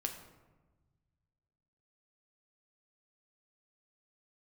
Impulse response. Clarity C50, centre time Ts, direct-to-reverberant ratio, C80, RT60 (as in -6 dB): 8.0 dB, 22 ms, 3.0 dB, 10.0 dB, 1.2 s